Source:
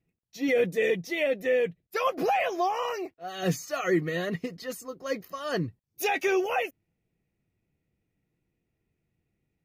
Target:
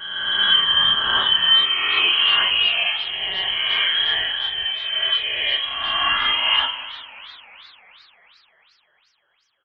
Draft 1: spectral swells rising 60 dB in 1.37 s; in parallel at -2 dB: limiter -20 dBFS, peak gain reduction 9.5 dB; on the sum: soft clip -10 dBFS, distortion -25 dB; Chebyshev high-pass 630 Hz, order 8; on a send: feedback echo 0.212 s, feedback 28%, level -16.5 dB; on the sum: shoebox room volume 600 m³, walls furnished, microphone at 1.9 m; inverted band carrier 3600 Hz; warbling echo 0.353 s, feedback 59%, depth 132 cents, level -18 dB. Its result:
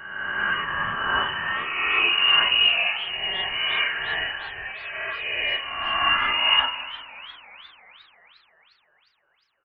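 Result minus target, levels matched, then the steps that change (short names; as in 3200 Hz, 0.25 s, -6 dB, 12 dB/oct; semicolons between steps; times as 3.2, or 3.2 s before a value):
250 Hz band +5.5 dB
change: Chebyshev high-pass 280 Hz, order 8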